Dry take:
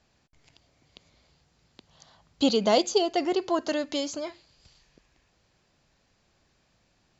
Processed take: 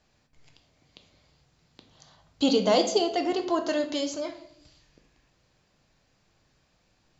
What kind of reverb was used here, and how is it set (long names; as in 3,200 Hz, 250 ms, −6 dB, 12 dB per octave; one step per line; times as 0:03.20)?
rectangular room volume 140 cubic metres, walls mixed, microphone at 0.48 metres
level −1 dB